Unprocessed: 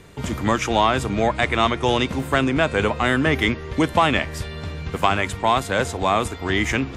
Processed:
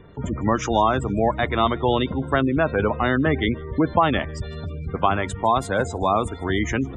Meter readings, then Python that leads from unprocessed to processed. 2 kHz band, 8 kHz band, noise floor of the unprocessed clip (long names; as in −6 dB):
−4.5 dB, can't be measured, −34 dBFS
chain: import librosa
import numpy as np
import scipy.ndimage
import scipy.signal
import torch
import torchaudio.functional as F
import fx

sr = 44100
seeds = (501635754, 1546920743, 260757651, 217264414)

y = fx.spec_gate(x, sr, threshold_db=-20, keep='strong')
y = fx.peak_eq(y, sr, hz=2400.0, db=-8.5, octaves=0.7)
y = fx.echo_wet_highpass(y, sr, ms=154, feedback_pct=48, hz=4200.0, wet_db=-22)